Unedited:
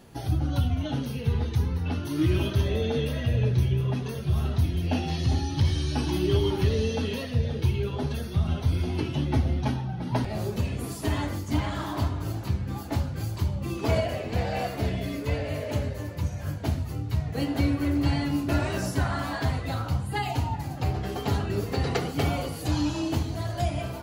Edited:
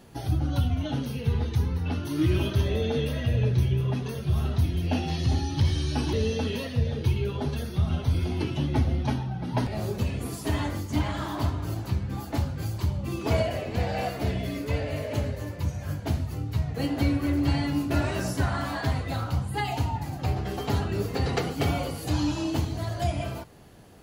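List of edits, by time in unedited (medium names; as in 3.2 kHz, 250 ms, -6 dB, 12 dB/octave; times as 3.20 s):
6.13–6.71 s: delete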